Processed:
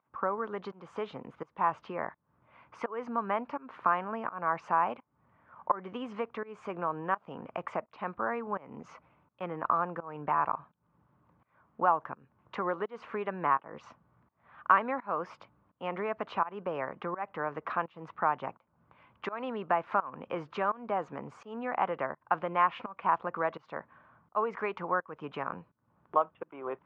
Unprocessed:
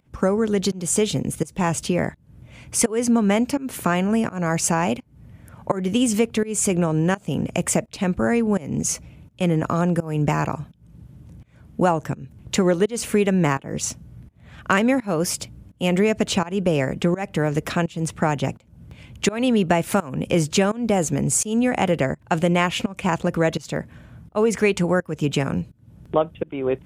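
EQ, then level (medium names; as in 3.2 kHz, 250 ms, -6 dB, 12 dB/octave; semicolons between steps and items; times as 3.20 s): band-pass filter 1.1 kHz, Q 3.6; distance through air 270 m; +3.5 dB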